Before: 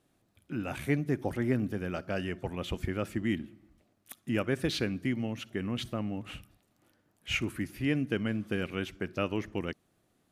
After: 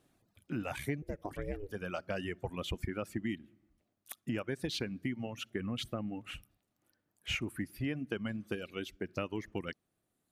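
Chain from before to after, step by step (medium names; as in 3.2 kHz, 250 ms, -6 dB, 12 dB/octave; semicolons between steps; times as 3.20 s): 8.55–9.09 s: graphic EQ 125/1000/2000/8000 Hz -6/-8/-3/-3 dB; reverb removal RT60 2 s; compression 6:1, threshold -33 dBFS, peak gain reduction 10.5 dB; 1.02–1.71 s: ring modulator 200 Hz; 5.33–6.23 s: band-stop 960 Hz, Q 7.4; trim +1 dB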